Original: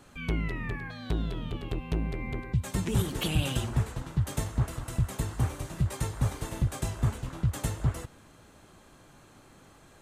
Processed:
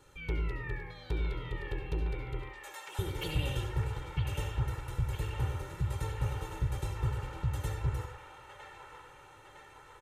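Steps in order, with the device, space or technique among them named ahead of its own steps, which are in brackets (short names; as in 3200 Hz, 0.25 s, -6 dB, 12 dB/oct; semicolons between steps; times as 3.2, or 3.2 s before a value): 2.42–2.99 steep high-pass 590 Hz 72 dB/oct; microphone above a desk (comb 2.2 ms, depth 90%; reverb RT60 0.50 s, pre-delay 62 ms, DRR 6 dB); band-limited delay 0.958 s, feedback 60%, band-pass 1400 Hz, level -3 dB; dynamic EQ 8600 Hz, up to -7 dB, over -51 dBFS, Q 0.73; gain -8 dB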